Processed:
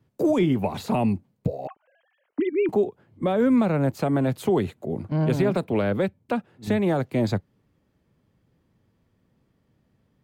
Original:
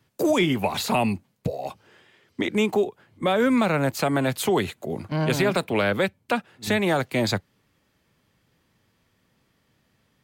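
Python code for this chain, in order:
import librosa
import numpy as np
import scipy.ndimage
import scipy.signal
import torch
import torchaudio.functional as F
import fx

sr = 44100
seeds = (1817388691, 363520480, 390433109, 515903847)

y = fx.sine_speech(x, sr, at=(1.67, 2.69))
y = fx.tilt_shelf(y, sr, db=7.5, hz=920.0)
y = F.gain(torch.from_numpy(y), -4.5).numpy()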